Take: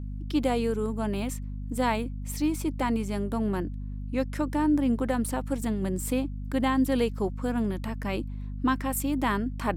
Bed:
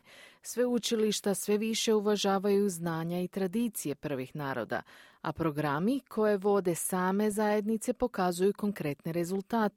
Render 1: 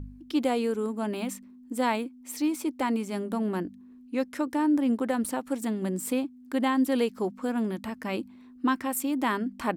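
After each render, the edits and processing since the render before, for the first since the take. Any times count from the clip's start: de-hum 50 Hz, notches 4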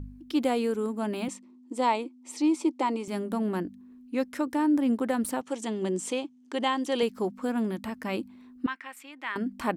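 1.28–3.08 speaker cabinet 300–8500 Hz, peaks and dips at 340 Hz +9 dB, 920 Hz +5 dB, 1600 Hz -10 dB; 5.41–7.03 speaker cabinet 160–8800 Hz, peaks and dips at 260 Hz -8 dB, 370 Hz +6 dB, 900 Hz +3 dB, 1500 Hz -3 dB, 3100 Hz +7 dB, 6200 Hz +8 dB; 8.66–9.36 band-pass 2100 Hz, Q 1.7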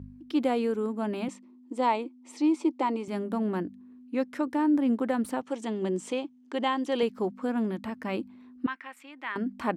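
HPF 76 Hz; high shelf 5400 Hz -12 dB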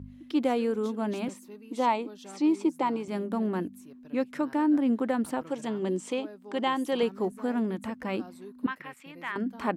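add bed -18.5 dB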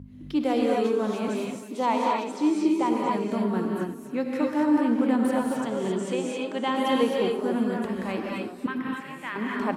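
echo 0.341 s -14.5 dB; non-linear reverb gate 0.29 s rising, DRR -2 dB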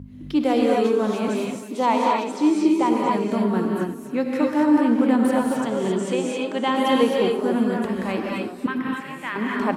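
gain +4.5 dB

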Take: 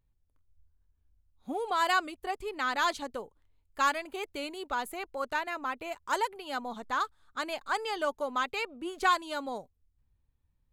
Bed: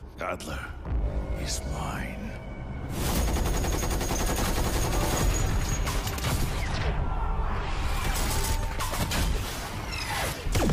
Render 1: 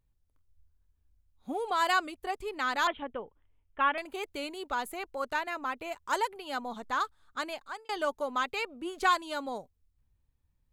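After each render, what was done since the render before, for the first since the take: 2.87–3.98 steep low-pass 3400 Hz 96 dB/oct; 7.39–7.89 fade out linear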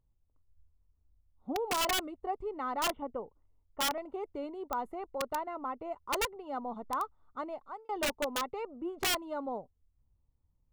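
polynomial smoothing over 65 samples; wrapped overs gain 25 dB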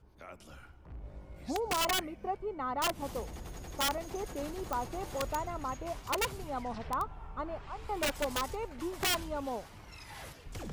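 add bed -17.5 dB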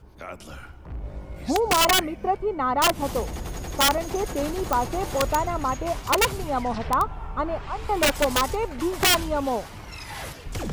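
gain +11.5 dB

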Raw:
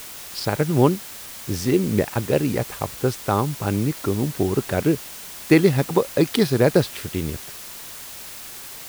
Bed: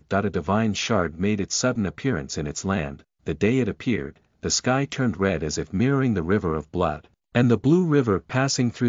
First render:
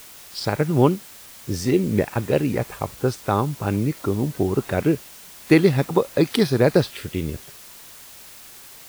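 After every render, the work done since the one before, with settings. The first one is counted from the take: noise print and reduce 6 dB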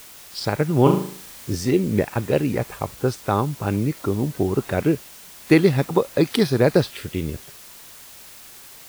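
0.82–1.55 flutter echo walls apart 6.4 m, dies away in 0.51 s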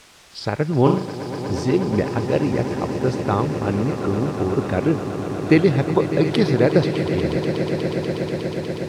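air absorption 73 m; swelling echo 0.121 s, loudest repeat 8, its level -14 dB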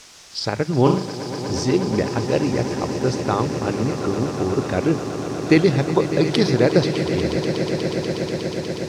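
bell 5800 Hz +9 dB 0.97 oct; notches 50/100/150/200 Hz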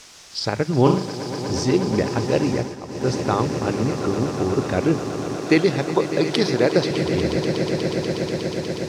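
2.52–3.11 dip -11 dB, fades 0.24 s; 5.36–6.91 HPF 250 Hz 6 dB/oct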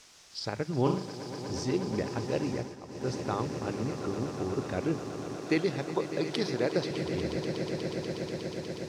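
gain -11 dB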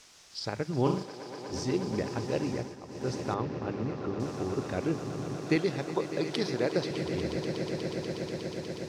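1.03–1.53 tone controls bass -11 dB, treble -5 dB; 3.34–4.2 air absorption 190 m; 5.02–5.56 bell 140 Hz +8.5 dB 0.74 oct

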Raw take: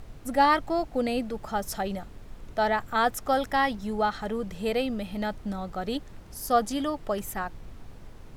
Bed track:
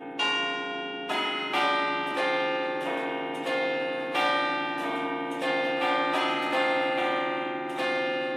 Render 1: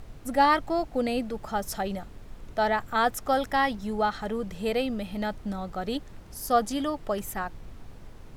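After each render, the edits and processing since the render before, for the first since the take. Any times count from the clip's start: nothing audible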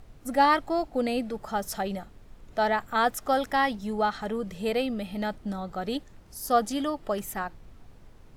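noise print and reduce 6 dB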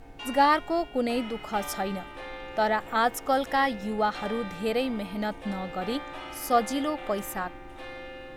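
add bed track -13.5 dB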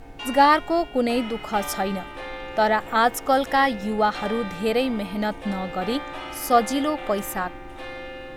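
gain +5 dB

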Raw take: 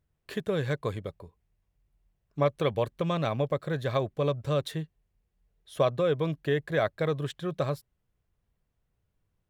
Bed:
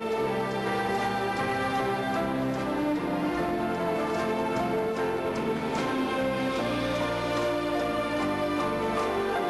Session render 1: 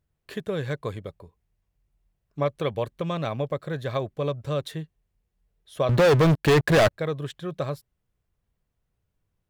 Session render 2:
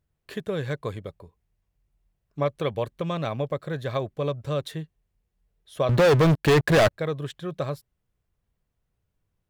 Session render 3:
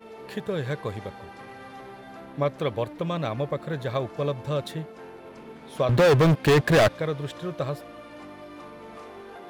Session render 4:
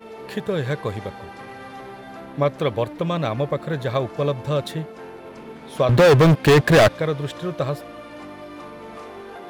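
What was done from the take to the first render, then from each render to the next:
5.89–6.91 sample leveller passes 5
nothing audible
add bed -15 dB
gain +5 dB

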